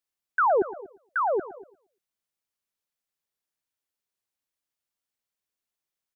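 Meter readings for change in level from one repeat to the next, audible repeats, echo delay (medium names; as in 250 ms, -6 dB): no regular repeats, 3, 115 ms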